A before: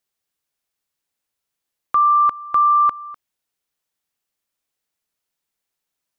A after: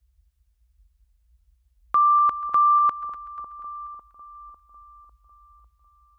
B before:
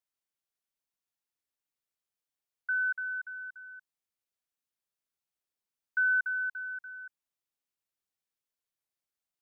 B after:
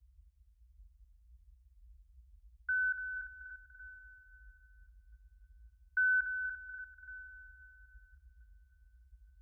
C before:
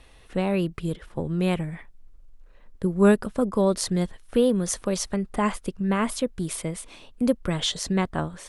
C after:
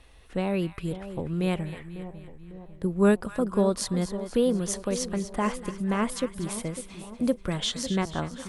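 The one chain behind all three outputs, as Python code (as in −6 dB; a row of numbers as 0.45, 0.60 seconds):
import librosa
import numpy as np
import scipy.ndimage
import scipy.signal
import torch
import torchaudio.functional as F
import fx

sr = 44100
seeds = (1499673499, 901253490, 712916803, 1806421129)

y = fx.dmg_noise_band(x, sr, seeds[0], low_hz=38.0, high_hz=68.0, level_db=-58.0)
y = fx.echo_split(y, sr, split_hz=1000.0, low_ms=550, high_ms=243, feedback_pct=52, wet_db=-12.0)
y = y * 10.0 ** (-3.0 / 20.0)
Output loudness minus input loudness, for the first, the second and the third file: −4.0, −4.5, −2.5 LU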